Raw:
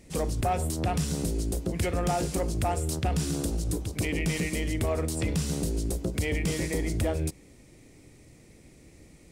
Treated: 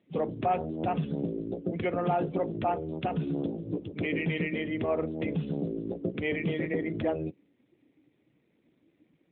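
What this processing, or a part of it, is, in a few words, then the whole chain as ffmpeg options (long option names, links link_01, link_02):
mobile call with aggressive noise cancelling: -filter_complex "[0:a]asettb=1/sr,asplit=3[link_01][link_02][link_03];[link_01]atrim=end=2.414[link_04];[link_02]atrim=start=2.41:end=4.12,asetpts=PTS-STARTPTS,afade=type=in:duration=0.004:curve=qsin,afade=type=out:start_time=1.706:duration=0.004:curve=qsin,acrossover=split=8000[link_05][link_06];[link_06]acompressor=threshold=-50dB:ratio=4:attack=1:release=60[link_07];[link_05][link_07]amix=inputs=2:normalize=0[link_08];[link_03]atrim=start=4.116[link_09];[link_04][link_08]acrossfade=duration=0.004:curve1=hsin:curve2=qsin[link_10];[link_10][link_09]acrossfade=duration=0.004:curve1=qsin:curve2=hsin,highpass=170,afftdn=noise_reduction=15:noise_floor=-40,volume=1.5dB" -ar 8000 -c:a libopencore_amrnb -b:a 12200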